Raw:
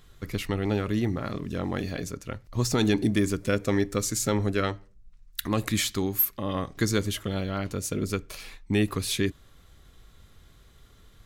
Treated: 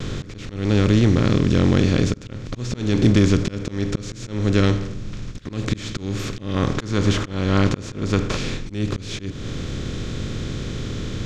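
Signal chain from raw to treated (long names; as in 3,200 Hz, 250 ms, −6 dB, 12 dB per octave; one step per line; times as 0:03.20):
compressor on every frequency bin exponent 0.4
low-pass filter 6,400 Hz 24 dB per octave
noise gate with hold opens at −30 dBFS
low-shelf EQ 240 Hz +11.5 dB
pitch vibrato 0.52 Hz 16 cents
parametric band 1,000 Hz −3.5 dB 1.4 octaves, from 0:06.56 +3 dB, from 0:08.37 −6.5 dB
volume swells 308 ms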